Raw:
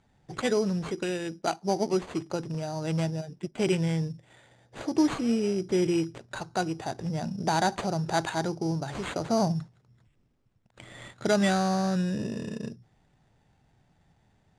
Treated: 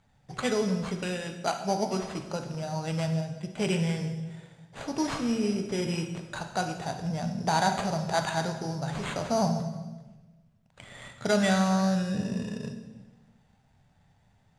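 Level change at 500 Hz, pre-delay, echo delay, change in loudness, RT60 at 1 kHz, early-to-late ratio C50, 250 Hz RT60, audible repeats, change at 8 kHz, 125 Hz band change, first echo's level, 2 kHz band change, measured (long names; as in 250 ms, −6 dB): −1.5 dB, 6 ms, no echo audible, −0.5 dB, 1.1 s, 7.5 dB, 1.4 s, no echo audible, +1.0 dB, +0.5 dB, no echo audible, +1.0 dB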